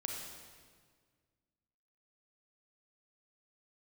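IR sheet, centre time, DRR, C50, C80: 72 ms, 0.0 dB, 1.0 dB, 3.5 dB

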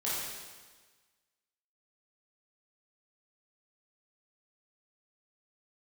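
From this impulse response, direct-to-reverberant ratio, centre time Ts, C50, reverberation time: -9.0 dB, 103 ms, -2.0 dB, 1.4 s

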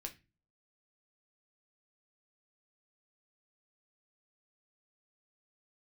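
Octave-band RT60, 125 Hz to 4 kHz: 0.55 s, 0.50 s, 0.30 s, 0.25 s, 0.30 s, 0.25 s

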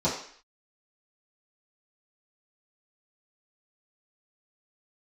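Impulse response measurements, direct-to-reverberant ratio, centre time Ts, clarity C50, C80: -11.0 dB, 35 ms, 5.5 dB, 9.0 dB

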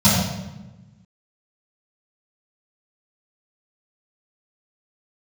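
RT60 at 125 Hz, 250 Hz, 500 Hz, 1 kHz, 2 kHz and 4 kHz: 1.7 s, 1.5 s, 1.1 s, 1.0 s, 0.90 s, 0.80 s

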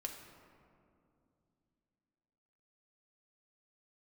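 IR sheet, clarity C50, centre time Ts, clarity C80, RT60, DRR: 5.5 dB, 48 ms, 7.0 dB, 2.5 s, 1.5 dB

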